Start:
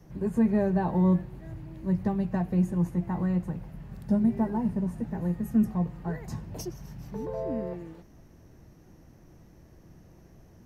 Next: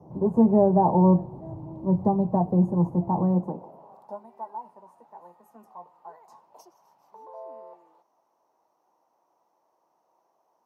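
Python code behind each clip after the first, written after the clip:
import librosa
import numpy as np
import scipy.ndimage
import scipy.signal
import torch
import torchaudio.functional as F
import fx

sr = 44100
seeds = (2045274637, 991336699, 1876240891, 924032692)

y = fx.curve_eq(x, sr, hz=(120.0, 950.0, 1700.0, 4200.0), db=(0, 12, -22, -16))
y = fx.filter_sweep_highpass(y, sr, from_hz=98.0, to_hz=1700.0, start_s=3.15, end_s=4.27, q=1.1)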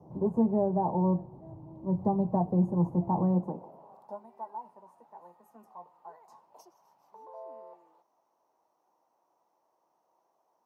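y = fx.rider(x, sr, range_db=10, speed_s=0.5)
y = y * librosa.db_to_amplitude(-5.5)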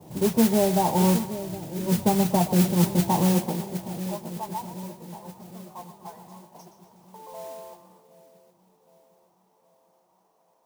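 y = fx.echo_split(x, sr, split_hz=600.0, low_ms=767, high_ms=122, feedback_pct=52, wet_db=-11)
y = fx.mod_noise(y, sr, seeds[0], snr_db=12)
y = y * librosa.db_to_amplitude(5.5)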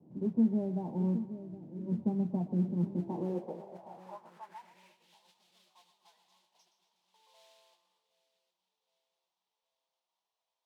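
y = fx.filter_sweep_bandpass(x, sr, from_hz=240.0, to_hz=3500.0, start_s=2.89, end_s=5.19, q=2.3)
y = y * librosa.db_to_amplitude(-5.5)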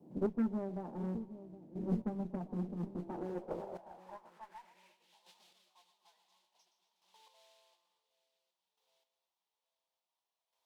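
y = fx.peak_eq(x, sr, hz=110.0, db=-10.0, octaves=1.5)
y = fx.cheby_harmonics(y, sr, harmonics=(8,), levels_db=(-22,), full_scale_db=-21.0)
y = fx.chopper(y, sr, hz=0.57, depth_pct=60, duty_pct=15)
y = y * librosa.db_to_amplitude(4.5)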